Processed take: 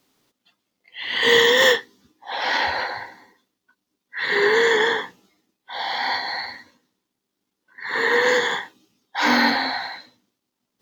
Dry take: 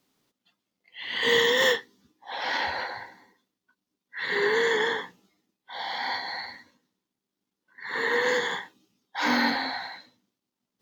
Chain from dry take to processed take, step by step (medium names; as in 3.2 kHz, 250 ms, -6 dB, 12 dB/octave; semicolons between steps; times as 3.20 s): peaking EQ 180 Hz -4 dB 0.71 oct; trim +6.5 dB